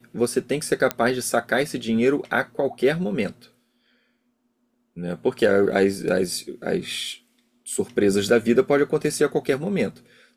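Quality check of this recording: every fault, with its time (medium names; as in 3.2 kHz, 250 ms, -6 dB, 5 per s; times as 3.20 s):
0.91 s: pop -7 dBFS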